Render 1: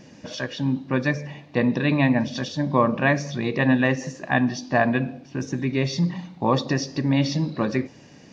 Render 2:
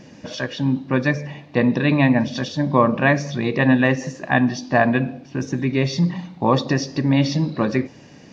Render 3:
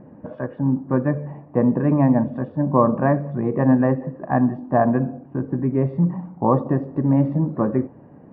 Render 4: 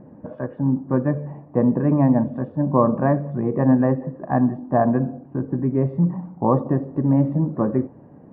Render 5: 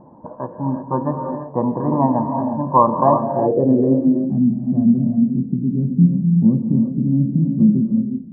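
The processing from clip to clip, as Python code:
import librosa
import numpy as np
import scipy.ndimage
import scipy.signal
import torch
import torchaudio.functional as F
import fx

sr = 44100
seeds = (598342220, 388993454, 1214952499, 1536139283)

y1 = fx.high_shelf(x, sr, hz=6300.0, db=-4.5)
y1 = y1 * librosa.db_to_amplitude(3.5)
y2 = scipy.signal.sosfilt(scipy.signal.butter(4, 1200.0, 'lowpass', fs=sr, output='sos'), y1)
y3 = fx.high_shelf(y2, sr, hz=2100.0, db=-8.5)
y4 = fx.comb_fb(y3, sr, f0_hz=340.0, decay_s=0.61, harmonics='all', damping=0.0, mix_pct=60)
y4 = fx.filter_sweep_lowpass(y4, sr, from_hz=960.0, to_hz=210.0, start_s=2.96, end_s=4.32, q=7.2)
y4 = fx.rev_gated(y4, sr, seeds[0], gate_ms=390, shape='rising', drr_db=4.0)
y4 = y4 * librosa.db_to_amplitude(4.5)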